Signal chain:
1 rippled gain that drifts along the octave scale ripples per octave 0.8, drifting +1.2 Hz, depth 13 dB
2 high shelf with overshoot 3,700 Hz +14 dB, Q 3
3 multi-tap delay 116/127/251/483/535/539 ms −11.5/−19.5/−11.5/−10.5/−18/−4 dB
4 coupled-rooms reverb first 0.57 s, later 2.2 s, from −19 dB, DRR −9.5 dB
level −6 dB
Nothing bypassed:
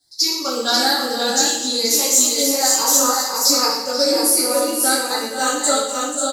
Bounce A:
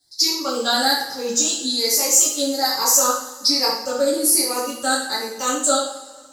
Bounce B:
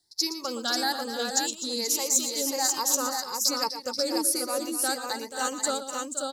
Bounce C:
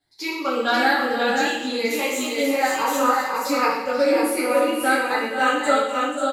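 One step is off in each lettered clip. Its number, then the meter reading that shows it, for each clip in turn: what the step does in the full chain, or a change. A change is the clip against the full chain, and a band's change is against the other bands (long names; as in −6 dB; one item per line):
3, change in momentary loudness spread +2 LU
4, echo-to-direct ratio 12.0 dB to −2.0 dB
2, 8 kHz band −18.5 dB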